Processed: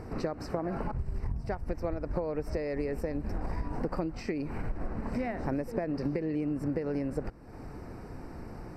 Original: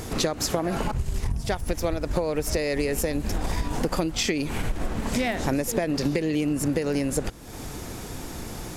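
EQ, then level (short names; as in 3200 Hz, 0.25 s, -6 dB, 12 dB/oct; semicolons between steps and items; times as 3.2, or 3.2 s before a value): running mean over 13 samples; -6.5 dB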